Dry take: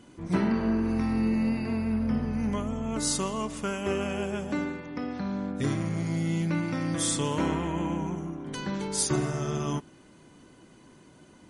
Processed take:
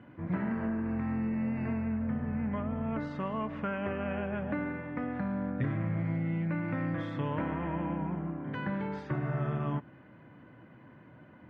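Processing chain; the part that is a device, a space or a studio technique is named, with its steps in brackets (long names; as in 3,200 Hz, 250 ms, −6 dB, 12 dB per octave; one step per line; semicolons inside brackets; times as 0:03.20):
0:06.16–0:06.56: notch filter 3,300 Hz, Q 20
parametric band 81 Hz +4 dB 0.28 octaves
bass amplifier (downward compressor, threshold −29 dBFS, peak gain reduction 9 dB; loudspeaker in its box 80–2,300 Hz, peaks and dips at 120 Hz +8 dB, 390 Hz −7 dB, 580 Hz +3 dB, 1,700 Hz +5 dB)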